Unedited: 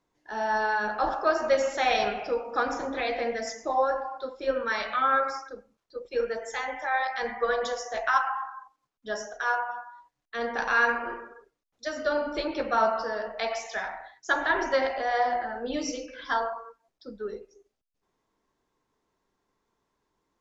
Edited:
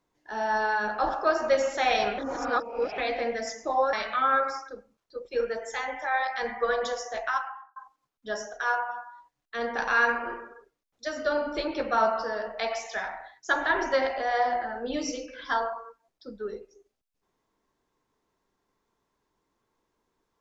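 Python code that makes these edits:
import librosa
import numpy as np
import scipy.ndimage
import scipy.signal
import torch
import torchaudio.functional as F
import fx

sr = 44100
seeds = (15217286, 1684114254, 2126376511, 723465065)

y = fx.edit(x, sr, fx.reverse_span(start_s=2.18, length_s=0.8),
    fx.cut(start_s=3.93, length_s=0.8),
    fx.fade_out_span(start_s=7.85, length_s=0.71), tone=tone)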